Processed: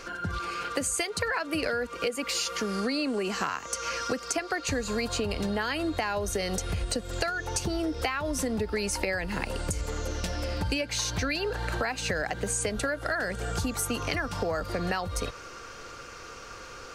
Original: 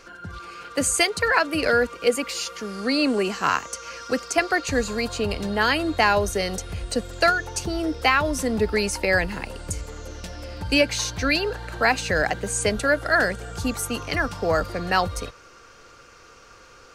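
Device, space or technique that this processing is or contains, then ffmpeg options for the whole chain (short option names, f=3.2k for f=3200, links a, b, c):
serial compression, peaks first: -af "acompressor=threshold=-28dB:ratio=6,acompressor=threshold=-33dB:ratio=2.5,volume=5.5dB"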